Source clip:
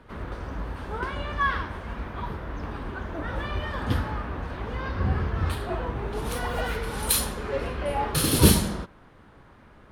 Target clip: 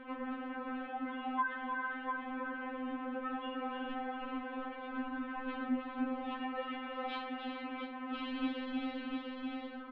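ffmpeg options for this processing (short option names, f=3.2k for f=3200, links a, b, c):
-filter_complex "[0:a]asplit=2[a][b];[b]aecho=0:1:302|319|398|451:0.316|0.355|0.355|0.282[c];[a][c]amix=inputs=2:normalize=0,highpass=f=230:t=q:w=0.5412,highpass=f=230:t=q:w=1.307,lowpass=f=3.2k:t=q:w=0.5176,lowpass=f=3.2k:t=q:w=0.7071,lowpass=f=3.2k:t=q:w=1.932,afreqshift=-110,asplit=2[d][e];[e]aecho=0:1:697:0.299[f];[d][f]amix=inputs=2:normalize=0,acompressor=threshold=-48dB:ratio=3,lowshelf=f=440:g=4,afftfilt=real='re*3.46*eq(mod(b,12),0)':imag='im*3.46*eq(mod(b,12),0)':win_size=2048:overlap=0.75,volume=7.5dB"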